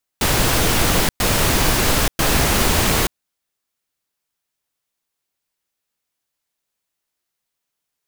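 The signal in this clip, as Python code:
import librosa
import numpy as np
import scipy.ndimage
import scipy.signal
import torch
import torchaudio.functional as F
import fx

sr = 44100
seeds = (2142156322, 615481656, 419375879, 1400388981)

y = fx.noise_burst(sr, seeds[0], colour='pink', on_s=0.88, off_s=0.11, bursts=3, level_db=-16.5)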